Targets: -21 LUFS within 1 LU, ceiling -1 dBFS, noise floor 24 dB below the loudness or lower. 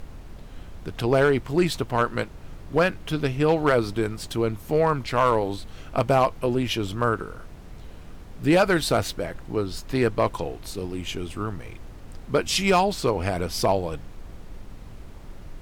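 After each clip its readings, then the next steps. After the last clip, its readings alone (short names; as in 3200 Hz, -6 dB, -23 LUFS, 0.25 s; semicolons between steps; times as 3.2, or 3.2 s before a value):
clipped 0.5%; flat tops at -12.0 dBFS; noise floor -42 dBFS; noise floor target -49 dBFS; loudness -24.5 LUFS; peak -12.0 dBFS; loudness target -21.0 LUFS
-> clip repair -12 dBFS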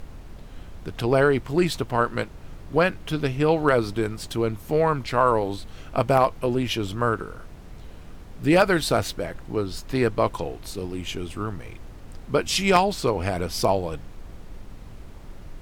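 clipped 0.0%; noise floor -42 dBFS; noise floor target -48 dBFS
-> noise print and reduce 6 dB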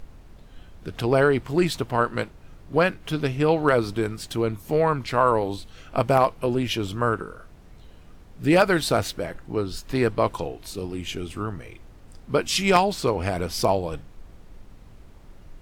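noise floor -48 dBFS; loudness -24.0 LUFS; peak -3.0 dBFS; loudness target -21.0 LUFS
-> gain +3 dB; limiter -1 dBFS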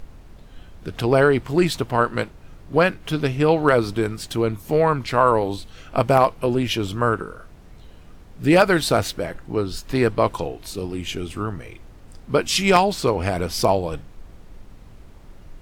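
loudness -21.0 LUFS; peak -1.0 dBFS; noise floor -45 dBFS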